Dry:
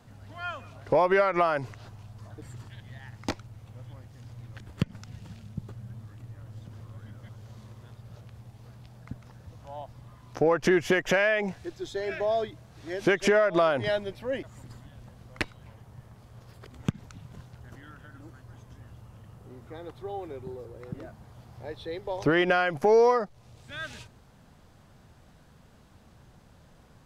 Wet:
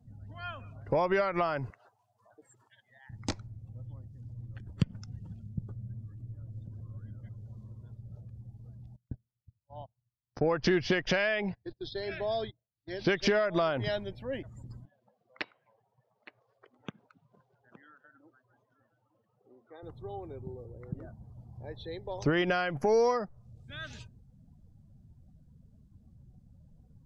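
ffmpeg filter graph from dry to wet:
-filter_complex "[0:a]asettb=1/sr,asplit=3[s0][s1][s2];[s0]atrim=end=1.704[s3];[s1]atrim=start=1.7:end=3.1,asetpts=PTS-STARTPTS,afade=t=in:d=0.004:c=qsin,afade=t=out:st=1.396:d=0.004:c=qsin,highpass=480,equalizer=f=4900:w=0.98:g=-3[s4];[s2]atrim=start=3.096[s5];[s3][s4]acrossfade=d=0.004:c1=hsin:c2=qsin[s6];[s6][s5]acrossfade=d=0.004:c1=qsin:c2=hsin,asettb=1/sr,asplit=3[s7][s8][s9];[s7]atrim=end=8.964[s10];[s8]atrim=start=8.96:end=13.46,asetpts=PTS-STARTPTS,afade=t=in:d=0.004:c=qsin,afade=t=out:st=4.496:d=0.004:c=qsin,highshelf=f=5800:t=q:w=3:g=-8.5,agate=range=0.0631:threshold=0.00891:ratio=16:release=100:detection=peak[s11];[s9]atrim=start=13.456[s12];[s10][s11]acrossfade=d=0.004:c1=hsin:c2=qsin[s13];[s13][s12]acrossfade=d=0.004:c1=qsin:c2=hsin,asettb=1/sr,asplit=3[s14][s15][s16];[s14]atrim=end=14.854[s17];[s15]atrim=start=14.85:end=19.83,asetpts=PTS-STARTPTS,afade=t=in:d=0.004:c=qsin,afade=t=out:st=4.976:d=0.004:c=qsin,highpass=420,lowpass=3700,aecho=1:1:866:0.188,atrim=end_sample=219618[s18];[s16]atrim=start=19.826[s19];[s17][s18]acrossfade=d=0.004:c1=hsin:c2=qsin[s20];[s20][s19]acrossfade=d=0.004:c1=qsin:c2=hsin,afftdn=nr=23:nf=-51,bass=f=250:g=7,treble=f=4000:g=10,volume=0.501"

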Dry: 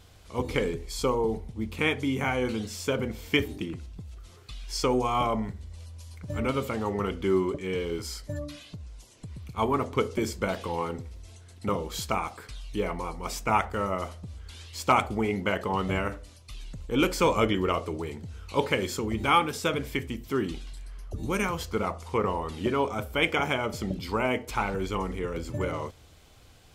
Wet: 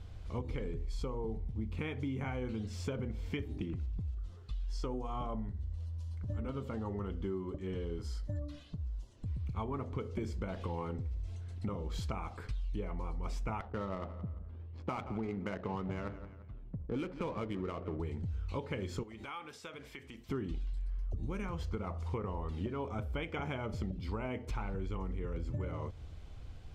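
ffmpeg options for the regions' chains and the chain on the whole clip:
-filter_complex "[0:a]asettb=1/sr,asplit=3[s0][s1][s2];[s0]atrim=end=4.114[s3];[s1]atrim=start=4.11:end=9.26,asetpts=PTS-STARTPTS,afade=t=in:d=0.004:c=qsin,afade=t=out:st=5.146:d=0.004:c=qsin,equalizer=f=2300:t=o:w=0.24:g=-8.5,flanger=delay=3:depth=1.7:regen=-67:speed=1.4:shape=triangular[s4];[s2]atrim=start=9.256[s5];[s3][s4]acrossfade=d=0.004:c1=hsin:c2=qsin[s6];[s6][s5]acrossfade=d=0.004:c1=qsin:c2=hsin,asettb=1/sr,asplit=3[s7][s8][s9];[s7]atrim=end=13.604[s10];[s8]atrim=start=13.6:end=18,asetpts=PTS-STARTPTS,afade=t=in:d=0.004:c=qsin,afade=t=out:st=4.396:d=0.004:c=qsin,highpass=120,adynamicsmooth=sensitivity=5:basefreq=530,asplit=2[s11][s12];[s12]adelay=172,lowpass=f=4600:p=1,volume=0.112,asplit=2[s13][s14];[s14]adelay=172,lowpass=f=4600:p=1,volume=0.36,asplit=2[s15][s16];[s16]adelay=172,lowpass=f=4600:p=1,volume=0.36[s17];[s11][s13][s15][s17]amix=inputs=4:normalize=0,atrim=end_sample=194040[s18];[s9]atrim=start=17.996[s19];[s10][s18]acrossfade=d=0.004:c1=hsin:c2=qsin[s20];[s20][s19]acrossfade=d=0.004:c1=qsin:c2=hsin,asettb=1/sr,asplit=3[s21][s22][s23];[s21]atrim=end=19.034[s24];[s22]atrim=start=19.03:end=20.29,asetpts=PTS-STARTPTS,afade=t=in:d=0.004:c=qsin,afade=t=out:st=1.256:d=0.004:c=qsin,highpass=f=1100:p=1,acompressor=threshold=0.00631:ratio=2.5:attack=3.2:release=140:knee=1:detection=peak[s25];[s23]atrim=start=20.286[s26];[s24][s25]acrossfade=d=0.004:c1=hsin:c2=qsin[s27];[s27][s26]acrossfade=d=0.004:c1=qsin:c2=hsin,aemphasis=mode=reproduction:type=bsi,alimiter=limit=0.2:level=0:latency=1:release=298,acompressor=threshold=0.0282:ratio=6,volume=0.668"

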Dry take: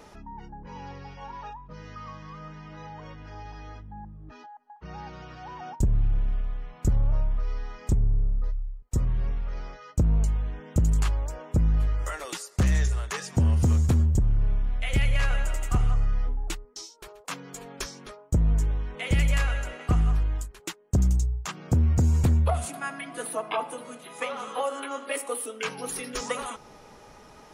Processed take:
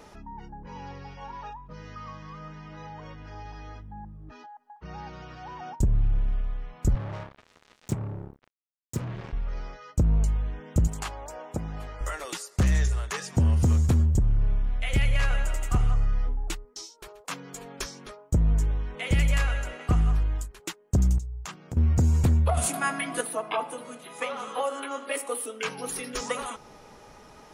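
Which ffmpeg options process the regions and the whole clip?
-filter_complex "[0:a]asettb=1/sr,asplit=3[s0][s1][s2];[s0]atrim=end=6.954[s3];[s1]atrim=start=6.95:end=9.33,asetpts=PTS-STARTPTS,afade=t=in:d=0.004:c=qsin,afade=t=out:st=2.376:d=0.004:c=qsin,highpass=f=110:w=0.5412,highpass=f=110:w=1.3066,acrusher=bits=5:mix=0:aa=0.5[s4];[s2]atrim=start=9.326[s5];[s3][s4]acrossfade=d=0.004:c1=hsin:c2=qsin[s6];[s6][s5]acrossfade=d=0.004:c1=qsin:c2=hsin,asettb=1/sr,asplit=3[s7][s8][s9];[s7]atrim=end=10.874[s10];[s8]atrim=start=10.87:end=12.01,asetpts=PTS-STARTPTS,afade=t=in:d=0.004:c=qsin,afade=t=out:st=1.136:d=0.004:c=qsin,highpass=f=320:p=1,equalizer=f=760:t=o:w=0.5:g=6.5[s11];[s9]atrim=start=12.006[s12];[s10][s11]acrossfade=d=0.004:c1=hsin:c2=qsin[s13];[s13][s12]acrossfade=d=0.004:c1=qsin:c2=hsin,asettb=1/sr,asplit=3[s14][s15][s16];[s14]atrim=end=21.184[s17];[s15]atrim=start=21.18:end=21.77,asetpts=PTS-STARTPTS,afade=t=in:d=0.004:c=qsin,afade=t=out:st=0.586:d=0.004:c=qsin,agate=range=0.447:threshold=0.00891:ratio=16:release=100:detection=peak,acompressor=threshold=0.0224:ratio=6:attack=3.2:release=140:knee=1:detection=peak[s18];[s16]atrim=start=21.766[s19];[s17][s18]acrossfade=d=0.004:c1=hsin:c2=qsin[s20];[s20][s19]acrossfade=d=0.004:c1=qsin:c2=hsin,asettb=1/sr,asplit=3[s21][s22][s23];[s21]atrim=end=22.574[s24];[s22]atrim=start=22.57:end=23.21,asetpts=PTS-STARTPTS,afade=t=in:d=0.004:c=qsin,afade=t=out:st=0.636:d=0.004:c=qsin,highshelf=f=9500:g=7,asplit=2[s25][s26];[s26]adelay=19,volume=0.251[s27];[s25][s27]amix=inputs=2:normalize=0,atrim=end_sample=28224,acontrast=49[s28];[s23]atrim=start=23.206[s29];[s24][s28]acrossfade=d=0.004:c1=hsin:c2=qsin[s30];[s30][s29]acrossfade=d=0.004:c1=qsin:c2=hsin"

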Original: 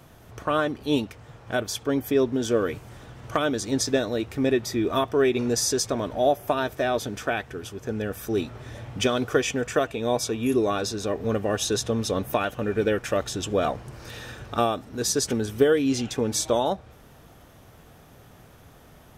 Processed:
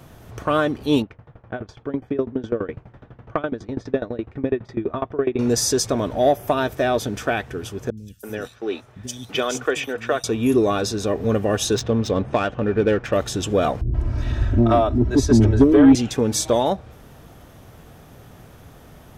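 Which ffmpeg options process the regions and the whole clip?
-filter_complex "[0:a]asettb=1/sr,asplit=3[s0][s1][s2];[s0]atrim=end=1.024[s3];[s1]atrim=start=1.02:end=5.39,asetpts=PTS-STARTPTS,afade=t=in:d=0.004:c=qsin,afade=t=out:st=4.366:d=0.004:c=qsin,lowpass=2000,aeval=exprs='val(0)*pow(10,-21*if(lt(mod(12*n/s,1),2*abs(12)/1000),1-mod(12*n/s,1)/(2*abs(12)/1000),(mod(12*n/s,1)-2*abs(12)/1000)/(1-2*abs(12)/1000))/20)':c=same[s4];[s2]atrim=start=5.386[s5];[s3][s4]acrossfade=d=0.004:c1=hsin:c2=qsin[s6];[s6][s5]acrossfade=d=0.004:c1=qsin:c2=hsin,asettb=1/sr,asplit=3[s7][s8][s9];[s7]atrim=end=7.904[s10];[s8]atrim=start=7.9:end=10.24,asetpts=PTS-STARTPTS,afade=t=in:d=0.004:c=qsin,afade=t=out:st=2.336:d=0.004:c=qsin,agate=range=0.316:threshold=0.0158:ratio=16:release=100:detection=peak,lowshelf=f=330:g=-11.5,acrossover=split=220|4500[s11][s12][s13];[s13]adelay=70[s14];[s12]adelay=330[s15];[s11][s15][s14]amix=inputs=3:normalize=0,atrim=end_sample=103194[s16];[s9]atrim=start=10.236[s17];[s10][s16]acrossfade=d=0.004:c1=hsin:c2=qsin[s18];[s18][s17]acrossfade=d=0.004:c1=qsin:c2=hsin,asettb=1/sr,asplit=3[s19][s20][s21];[s19]atrim=end=11.754[s22];[s20]atrim=start=11.75:end=13.13,asetpts=PTS-STARTPTS,afade=t=in:d=0.004:c=qsin,afade=t=out:st=1.376:d=0.004:c=qsin,lowpass=f=9100:w=0.5412,lowpass=f=9100:w=1.3066,adynamicsmooth=sensitivity=3:basefreq=2700[s23];[s21]atrim=start=13.126[s24];[s22][s23]acrossfade=d=0.004:c1=hsin:c2=qsin[s25];[s25][s24]acrossfade=d=0.004:c1=qsin:c2=hsin,asettb=1/sr,asplit=3[s26][s27][s28];[s26]atrim=end=13.814[s29];[s27]atrim=start=13.81:end=15.95,asetpts=PTS-STARTPTS,afade=t=in:d=0.004:c=qsin,afade=t=out:st=2.136:d=0.004:c=qsin,aemphasis=mode=reproduction:type=riaa,aecho=1:1:3.1:0.87,atrim=end_sample=94374,acrossover=split=420[s30][s31];[s31]adelay=130[s32];[s30][s32]amix=inputs=2:normalize=0,atrim=end_sample=94374[s33];[s28]atrim=start=15.946[s34];[s29][s33]acrossfade=d=0.004:c1=hsin:c2=qsin[s35];[s35][s34]acrossfade=d=0.004:c1=qsin:c2=hsin,lowshelf=f=490:g=3.5,acontrast=61,volume=0.708"

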